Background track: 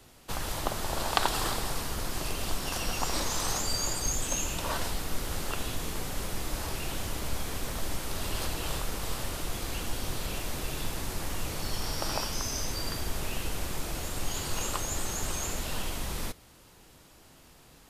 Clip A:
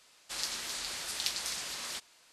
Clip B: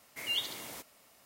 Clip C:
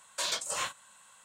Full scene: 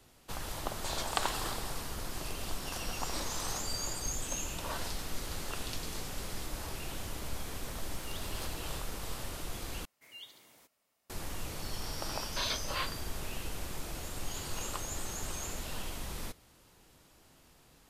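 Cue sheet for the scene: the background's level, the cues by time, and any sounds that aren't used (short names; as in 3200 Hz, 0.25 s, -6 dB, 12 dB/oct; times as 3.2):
background track -6 dB
0.66 add C -8.5 dB
4.47 add A -11 dB
7.78 add B -17.5 dB
9.85 replace with B -16.5 dB
12.18 add C -1.5 dB + downsampling 11025 Hz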